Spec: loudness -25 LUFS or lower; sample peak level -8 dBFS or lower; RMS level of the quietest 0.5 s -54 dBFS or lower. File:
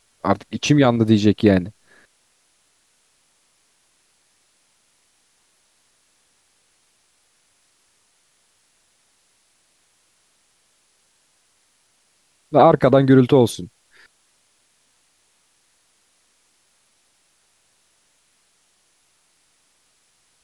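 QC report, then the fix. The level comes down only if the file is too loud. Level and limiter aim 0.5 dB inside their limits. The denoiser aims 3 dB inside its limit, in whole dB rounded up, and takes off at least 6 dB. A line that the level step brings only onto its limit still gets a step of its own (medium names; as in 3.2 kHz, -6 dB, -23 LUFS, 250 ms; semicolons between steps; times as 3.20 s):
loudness -16.5 LUFS: fail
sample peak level -2.5 dBFS: fail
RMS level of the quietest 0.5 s -63 dBFS: pass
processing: trim -9 dB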